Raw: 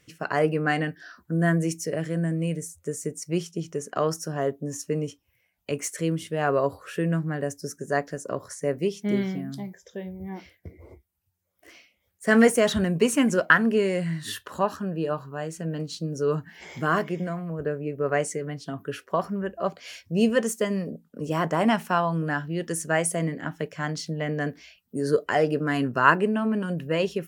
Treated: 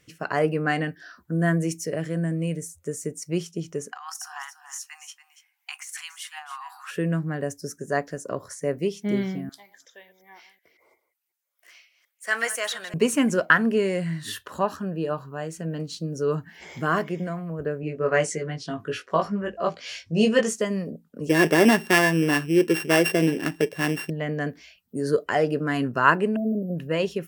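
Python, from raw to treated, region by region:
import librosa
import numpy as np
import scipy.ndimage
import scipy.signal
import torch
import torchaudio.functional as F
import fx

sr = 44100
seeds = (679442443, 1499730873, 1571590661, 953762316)

y = fx.chain(x, sr, fx.brickwall_highpass(low_hz=730.0),
    fx.over_compress(threshold_db=-37.0, ratio=-1.0),
    fx.echo_single(ms=284, db=-12.0), at=(3.92, 6.91))
y = fx.chain(y, sr, fx.reverse_delay(ms=183, wet_db=-14),
    fx.highpass(hz=1100.0, slope=12), at=(9.49, 12.94))
y = fx.chain(y, sr, fx.lowpass(hz=6000.0, slope=12),
    fx.high_shelf(hz=2300.0, db=7.0),
    fx.doubler(ms=19.0, db=-3.5), at=(17.81, 20.61))
y = fx.chain(y, sr, fx.sample_sort(block=16),
    fx.small_body(hz=(370.0, 1700.0), ring_ms=25, db=15), at=(21.29, 24.1))
y = fx.chain(y, sr, fx.brickwall_bandstop(low_hz=720.0, high_hz=11000.0),
    fx.high_shelf(hz=10000.0, db=9.5), at=(26.36, 26.76))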